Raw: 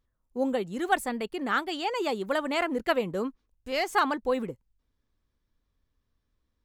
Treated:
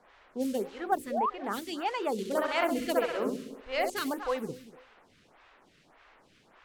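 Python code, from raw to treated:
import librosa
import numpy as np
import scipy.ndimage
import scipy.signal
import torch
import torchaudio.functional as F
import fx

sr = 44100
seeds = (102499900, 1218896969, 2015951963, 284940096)

y = fx.quant_dither(x, sr, seeds[0], bits=8, dither='triangular')
y = fx.hum_notches(y, sr, base_hz=60, count=9)
y = fx.quant_float(y, sr, bits=2)
y = fx.env_lowpass(y, sr, base_hz=1700.0, full_db=-23.0)
y = fx.room_flutter(y, sr, wall_m=11.2, rt60_s=0.89, at=(2.12, 3.9))
y = fx.spec_paint(y, sr, seeds[1], shape='rise', start_s=1.1, length_s=0.2, low_hz=480.0, high_hz=1300.0, level_db=-26.0)
y = fx.peak_eq(y, sr, hz=8700.0, db=-10.5, octaves=2.7, at=(0.79, 1.44))
y = fx.echo_feedback(y, sr, ms=243, feedback_pct=26, wet_db=-17.5)
y = fx.stagger_phaser(y, sr, hz=1.7)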